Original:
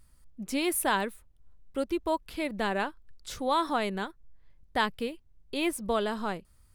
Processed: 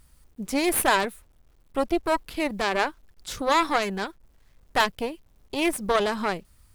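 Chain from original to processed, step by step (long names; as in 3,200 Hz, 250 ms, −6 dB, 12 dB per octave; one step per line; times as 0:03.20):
harmonic generator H 3 −22 dB, 6 −17 dB, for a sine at −13 dBFS
bit-depth reduction 12 bits, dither none
level +7 dB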